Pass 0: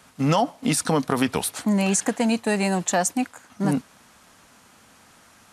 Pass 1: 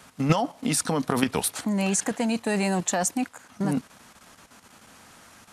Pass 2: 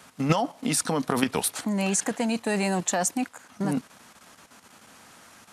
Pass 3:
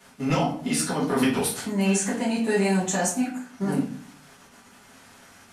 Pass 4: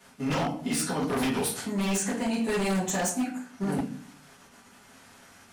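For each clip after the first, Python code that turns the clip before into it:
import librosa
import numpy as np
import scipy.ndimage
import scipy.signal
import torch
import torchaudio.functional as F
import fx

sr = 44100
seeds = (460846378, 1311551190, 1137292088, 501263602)

y1 = fx.level_steps(x, sr, step_db=9)
y1 = F.gain(torch.from_numpy(y1), 3.0).numpy()
y2 = fx.low_shelf(y1, sr, hz=80.0, db=-10.0)
y3 = fx.room_shoebox(y2, sr, seeds[0], volume_m3=49.0, walls='mixed', distance_m=1.8)
y3 = F.gain(torch.from_numpy(y3), -8.5).numpy()
y4 = 10.0 ** (-19.0 / 20.0) * (np.abs((y3 / 10.0 ** (-19.0 / 20.0) + 3.0) % 4.0 - 2.0) - 1.0)
y4 = F.gain(torch.from_numpy(y4), -2.5).numpy()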